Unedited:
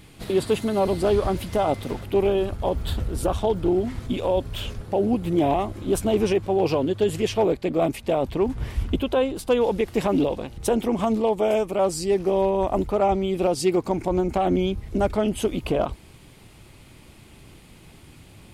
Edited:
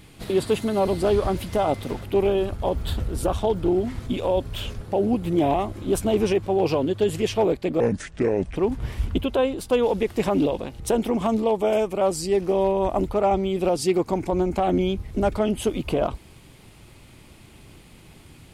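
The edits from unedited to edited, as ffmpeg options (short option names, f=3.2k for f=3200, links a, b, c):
-filter_complex "[0:a]asplit=3[a][b][c];[a]atrim=end=7.804[d];[b]atrim=start=7.8:end=8.34,asetpts=PTS-STARTPTS,asetrate=31311,aresample=44100[e];[c]atrim=start=8.336[f];[d][e]acrossfade=d=0.004:c1=hsin:c2=hsin[g];[g][f]acrossfade=d=0.004:c1=hsin:c2=hsin"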